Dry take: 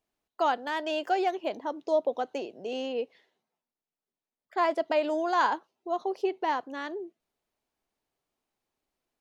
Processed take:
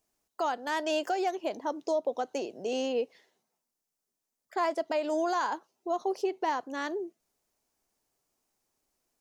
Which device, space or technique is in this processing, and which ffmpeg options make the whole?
over-bright horn tweeter: -af "highshelf=f=4.6k:t=q:w=1.5:g=6.5,alimiter=limit=-23dB:level=0:latency=1:release=313,volume=2.5dB"

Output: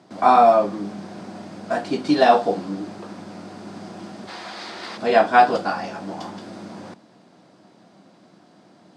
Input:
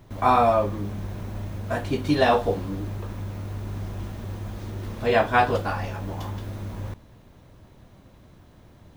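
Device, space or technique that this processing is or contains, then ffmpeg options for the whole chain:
television speaker: -filter_complex "[0:a]highpass=f=180:w=0.5412,highpass=f=180:w=1.3066,equalizer=f=190:t=q:w=4:g=6,equalizer=f=320:t=q:w=4:g=5,equalizer=f=720:t=q:w=4:g=8,equalizer=f=1.4k:t=q:w=4:g=4,equalizer=f=4.8k:t=q:w=4:g=10,equalizer=f=8.3k:t=q:w=4:g=5,lowpass=f=8.8k:w=0.5412,lowpass=f=8.8k:w=1.3066,asplit=3[a][b][c];[a]afade=t=out:st=4.27:d=0.02[d];[b]equalizer=f=125:t=o:w=1:g=-12,equalizer=f=250:t=o:w=1:g=-6,equalizer=f=1k:t=o:w=1:g=6,equalizer=f=2k:t=o:w=1:g=10,equalizer=f=4k:t=o:w=1:g=11,equalizer=f=16k:t=o:w=1:g=4,afade=t=in:st=4.27:d=0.02,afade=t=out:st=4.96:d=0.02[e];[c]afade=t=in:st=4.96:d=0.02[f];[d][e][f]amix=inputs=3:normalize=0"

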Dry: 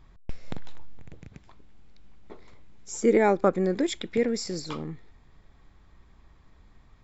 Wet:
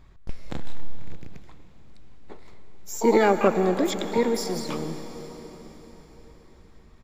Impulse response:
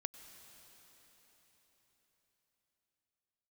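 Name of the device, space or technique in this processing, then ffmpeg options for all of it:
shimmer-style reverb: -filter_complex "[0:a]asplit=2[a][b];[b]asetrate=88200,aresample=44100,atempo=0.5,volume=-9dB[c];[a][c]amix=inputs=2:normalize=0[d];[1:a]atrim=start_sample=2205[e];[d][e]afir=irnorm=-1:irlink=0,asplit=3[f][g][h];[f]afade=t=out:st=0.53:d=0.02[i];[g]asplit=2[j][k];[k]adelay=29,volume=-2dB[l];[j][l]amix=inputs=2:normalize=0,afade=t=in:st=0.53:d=0.02,afade=t=out:st=1.15:d=0.02[m];[h]afade=t=in:st=1.15:d=0.02[n];[i][m][n]amix=inputs=3:normalize=0,volume=4dB"

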